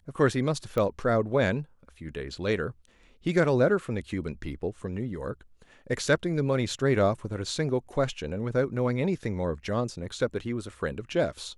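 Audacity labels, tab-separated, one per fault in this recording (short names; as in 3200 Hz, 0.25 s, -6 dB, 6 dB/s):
0.780000	0.780000	pop -17 dBFS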